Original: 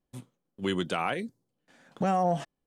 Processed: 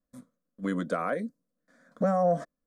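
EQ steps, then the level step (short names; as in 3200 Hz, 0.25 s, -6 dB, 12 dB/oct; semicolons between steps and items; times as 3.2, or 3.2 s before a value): dynamic EQ 430 Hz, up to +7 dB, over -40 dBFS, Q 0.77; high shelf 4500 Hz -6 dB; fixed phaser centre 560 Hz, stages 8; 0.0 dB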